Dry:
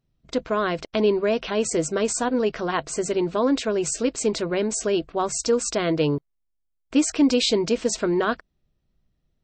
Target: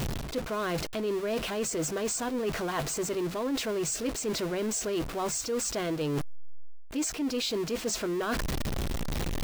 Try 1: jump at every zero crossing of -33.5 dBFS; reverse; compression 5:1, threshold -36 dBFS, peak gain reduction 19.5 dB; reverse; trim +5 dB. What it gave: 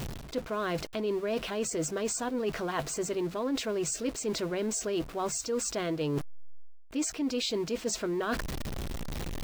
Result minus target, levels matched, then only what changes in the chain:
jump at every zero crossing: distortion -8 dB
change: jump at every zero crossing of -24 dBFS

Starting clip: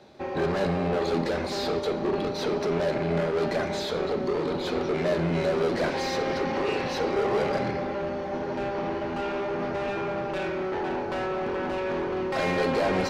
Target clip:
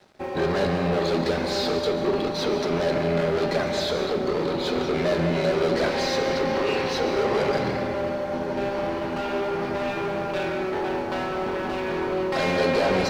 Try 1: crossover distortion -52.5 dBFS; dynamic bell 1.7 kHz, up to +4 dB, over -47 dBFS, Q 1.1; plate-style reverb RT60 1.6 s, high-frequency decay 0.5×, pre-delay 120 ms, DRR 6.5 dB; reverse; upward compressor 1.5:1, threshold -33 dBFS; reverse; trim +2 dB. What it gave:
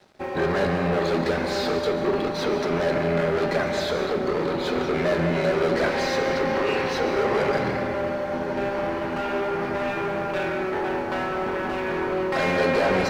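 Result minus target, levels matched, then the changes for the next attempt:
4 kHz band -3.0 dB
change: dynamic bell 4.2 kHz, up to +4 dB, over -47 dBFS, Q 1.1

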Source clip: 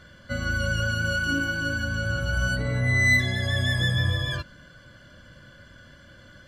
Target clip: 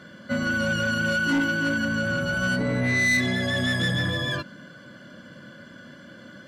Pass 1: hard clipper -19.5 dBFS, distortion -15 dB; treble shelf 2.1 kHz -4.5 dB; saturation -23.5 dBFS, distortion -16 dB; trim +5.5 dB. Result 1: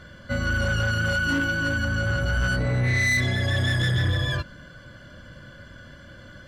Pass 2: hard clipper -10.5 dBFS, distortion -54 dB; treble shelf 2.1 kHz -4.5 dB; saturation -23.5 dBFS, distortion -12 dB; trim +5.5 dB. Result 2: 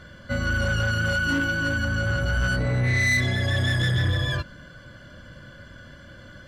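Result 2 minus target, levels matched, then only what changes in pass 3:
250 Hz band -5.0 dB
add after hard clipper: resonant high-pass 210 Hz, resonance Q 1.9

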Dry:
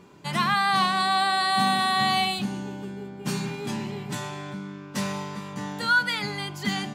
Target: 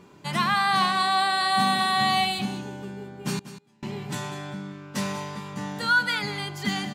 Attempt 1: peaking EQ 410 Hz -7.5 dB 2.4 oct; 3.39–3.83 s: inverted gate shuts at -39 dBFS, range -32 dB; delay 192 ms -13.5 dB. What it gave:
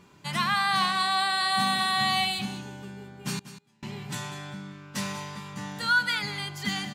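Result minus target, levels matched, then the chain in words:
500 Hz band -5.0 dB
3.39–3.83 s: inverted gate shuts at -39 dBFS, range -32 dB; delay 192 ms -13.5 dB

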